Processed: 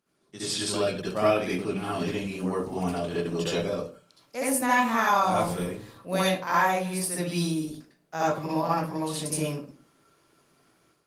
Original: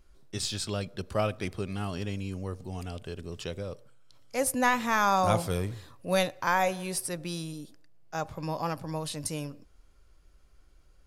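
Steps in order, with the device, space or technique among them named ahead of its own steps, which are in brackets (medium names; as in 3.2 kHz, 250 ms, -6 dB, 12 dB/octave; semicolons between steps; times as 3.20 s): 2.43–3.59 s: dynamic bell 780 Hz, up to +4 dB, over -51 dBFS, Q 1.3; far-field microphone of a smart speaker (reverberation RT60 0.35 s, pre-delay 60 ms, DRR -8 dB; high-pass 140 Hz 24 dB/octave; level rider gain up to 10 dB; trim -8.5 dB; Opus 24 kbps 48 kHz)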